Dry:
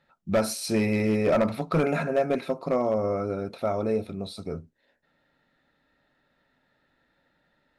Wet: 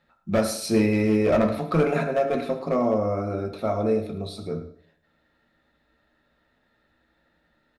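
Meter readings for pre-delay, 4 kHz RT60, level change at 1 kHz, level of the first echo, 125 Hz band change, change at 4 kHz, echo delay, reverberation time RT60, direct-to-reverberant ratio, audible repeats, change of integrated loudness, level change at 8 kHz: 3 ms, 0.60 s, +2.5 dB, -14.5 dB, +3.0 dB, +1.0 dB, 0.107 s, 0.55 s, 3.5 dB, 1, +2.5 dB, n/a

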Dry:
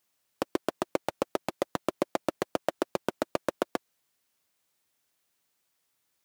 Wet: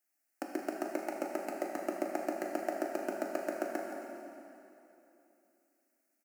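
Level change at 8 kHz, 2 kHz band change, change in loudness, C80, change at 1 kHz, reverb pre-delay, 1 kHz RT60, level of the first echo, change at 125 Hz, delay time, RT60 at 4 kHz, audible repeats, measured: -5.0 dB, -3.0 dB, -4.5 dB, 1.5 dB, -4.5 dB, 7 ms, 2.9 s, -11.0 dB, under -15 dB, 0.172 s, 2.6 s, 1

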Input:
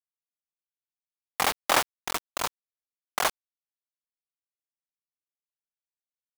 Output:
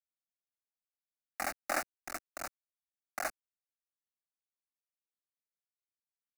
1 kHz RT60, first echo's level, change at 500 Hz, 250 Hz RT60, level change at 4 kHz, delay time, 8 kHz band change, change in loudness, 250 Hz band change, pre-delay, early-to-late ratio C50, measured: none, none, -9.0 dB, none, -18.5 dB, none, -11.5 dB, -11.5 dB, -8.5 dB, none, none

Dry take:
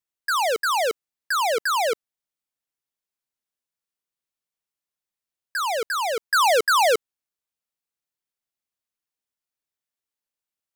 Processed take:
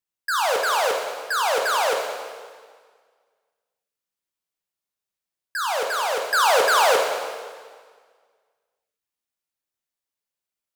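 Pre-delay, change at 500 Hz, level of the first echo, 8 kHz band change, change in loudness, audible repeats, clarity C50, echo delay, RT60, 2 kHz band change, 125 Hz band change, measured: 8 ms, +1.5 dB, none, +1.0 dB, +0.5 dB, none, 3.0 dB, none, 1.7 s, +1.0 dB, n/a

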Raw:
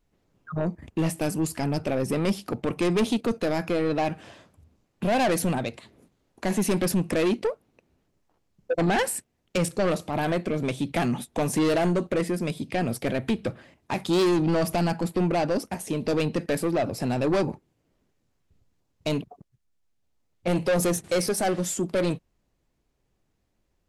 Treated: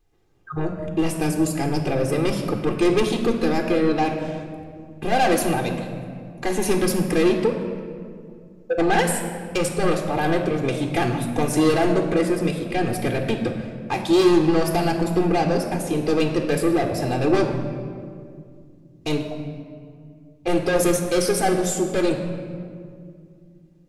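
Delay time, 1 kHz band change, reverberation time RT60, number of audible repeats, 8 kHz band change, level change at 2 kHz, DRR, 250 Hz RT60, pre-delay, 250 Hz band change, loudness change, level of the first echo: none, +5.5 dB, 2.2 s, none, +3.5 dB, +4.5 dB, 5.0 dB, 3.4 s, 3 ms, +4.5 dB, +4.0 dB, none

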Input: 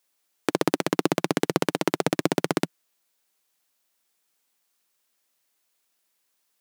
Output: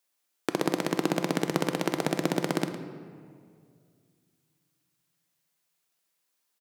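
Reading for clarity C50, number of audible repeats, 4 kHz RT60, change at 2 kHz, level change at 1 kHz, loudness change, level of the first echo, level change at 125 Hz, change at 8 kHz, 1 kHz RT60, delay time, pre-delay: 8.0 dB, 1, 1.2 s, -3.5 dB, -3.5 dB, -3.5 dB, -12.5 dB, -1.5 dB, -4.0 dB, 1.9 s, 0.11 s, 3 ms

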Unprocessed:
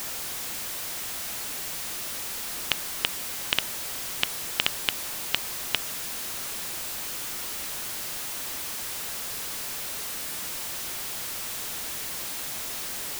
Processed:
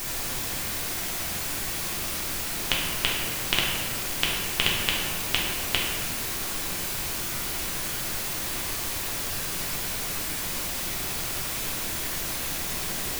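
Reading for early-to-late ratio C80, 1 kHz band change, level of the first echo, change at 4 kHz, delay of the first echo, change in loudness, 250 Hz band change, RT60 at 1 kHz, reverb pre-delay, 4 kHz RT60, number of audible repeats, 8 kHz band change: 2.5 dB, +4.5 dB, none, +3.0 dB, none, +3.0 dB, +9.0 dB, 1.5 s, 3 ms, 0.90 s, none, +2.5 dB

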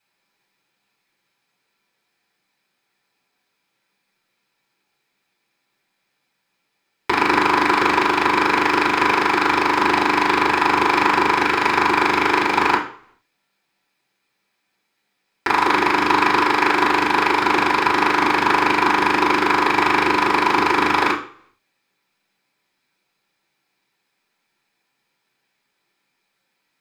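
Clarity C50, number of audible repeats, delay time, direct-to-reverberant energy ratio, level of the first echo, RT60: 9.5 dB, none, none, -8.5 dB, none, 0.50 s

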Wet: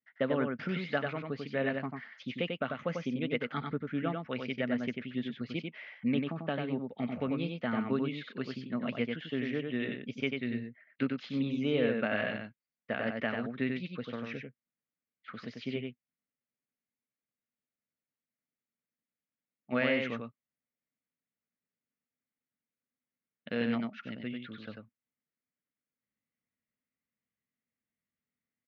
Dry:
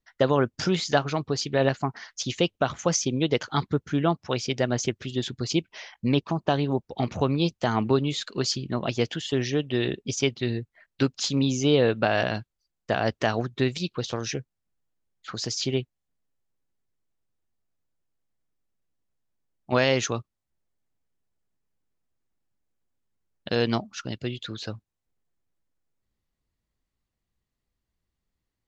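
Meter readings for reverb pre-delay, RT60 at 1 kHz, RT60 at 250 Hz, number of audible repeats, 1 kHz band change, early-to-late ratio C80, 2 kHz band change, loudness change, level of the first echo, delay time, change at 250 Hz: none, none, none, 1, -11.5 dB, none, -4.5 dB, -8.0 dB, -4.5 dB, 94 ms, -5.5 dB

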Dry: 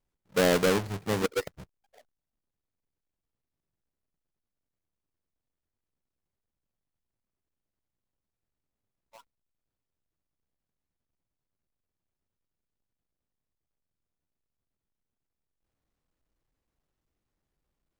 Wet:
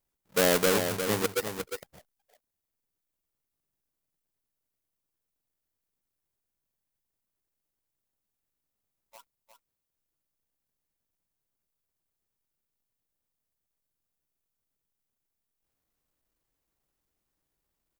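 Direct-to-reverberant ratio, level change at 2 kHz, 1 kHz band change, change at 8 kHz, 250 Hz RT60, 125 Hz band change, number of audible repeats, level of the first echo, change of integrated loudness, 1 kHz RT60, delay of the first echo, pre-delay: none, +1.0 dB, +0.5 dB, +6.0 dB, none, -3.0 dB, 1, -7.5 dB, 0.0 dB, none, 0.355 s, none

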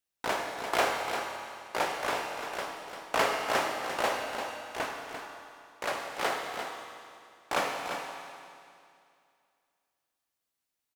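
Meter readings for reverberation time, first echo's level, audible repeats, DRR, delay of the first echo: 2.4 s, -8.5 dB, 1, 0.0 dB, 0.345 s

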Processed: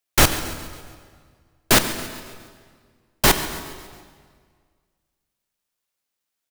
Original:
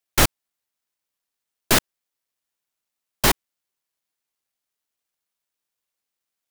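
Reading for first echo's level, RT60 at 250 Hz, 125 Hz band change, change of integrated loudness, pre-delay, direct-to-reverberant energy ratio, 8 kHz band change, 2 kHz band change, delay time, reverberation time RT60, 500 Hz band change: -16.0 dB, 1.9 s, +2.5 dB, +1.0 dB, 14 ms, 8.0 dB, +2.5 dB, +2.5 dB, 0.138 s, 1.8 s, +2.5 dB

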